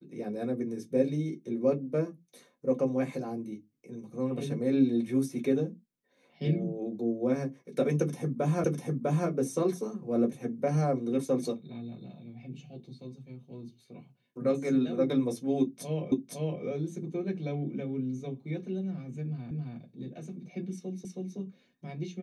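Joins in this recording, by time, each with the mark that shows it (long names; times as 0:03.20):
0:08.64: the same again, the last 0.65 s
0:16.12: the same again, the last 0.51 s
0:19.51: the same again, the last 0.27 s
0:21.05: the same again, the last 0.32 s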